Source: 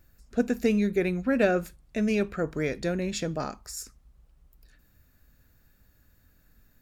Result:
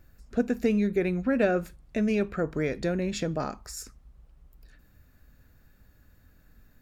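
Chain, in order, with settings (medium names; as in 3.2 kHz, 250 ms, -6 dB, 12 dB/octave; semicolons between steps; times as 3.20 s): treble shelf 3.5 kHz -7 dB; in parallel at +2 dB: compression, threshold -33 dBFS, peak gain reduction 14.5 dB; on the sum: trim -3 dB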